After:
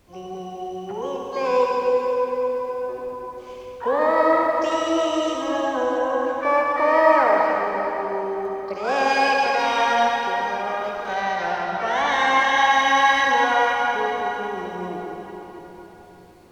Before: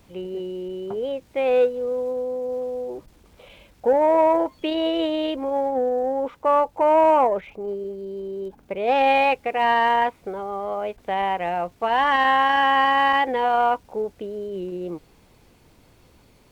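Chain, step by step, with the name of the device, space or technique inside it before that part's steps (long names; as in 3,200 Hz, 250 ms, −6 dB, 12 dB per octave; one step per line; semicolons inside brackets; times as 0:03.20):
0:11.14–0:12.57: high-frequency loss of the air 79 metres
shimmer-style reverb (pitch-shifted copies added +12 semitones −6 dB; convolution reverb RT60 4.1 s, pre-delay 49 ms, DRR −2 dB)
level −4.5 dB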